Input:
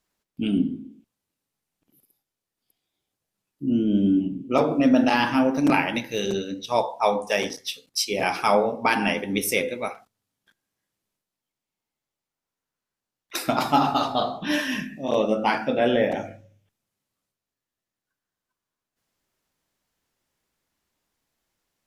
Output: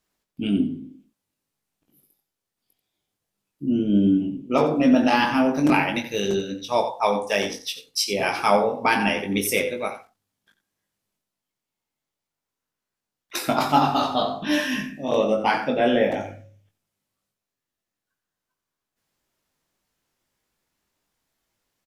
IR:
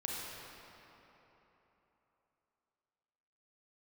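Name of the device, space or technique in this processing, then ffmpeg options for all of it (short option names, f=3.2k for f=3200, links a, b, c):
slapback doubling: -filter_complex "[0:a]asplit=3[a][b][c];[b]adelay=20,volume=-6dB[d];[c]adelay=89,volume=-11.5dB[e];[a][d][e]amix=inputs=3:normalize=0"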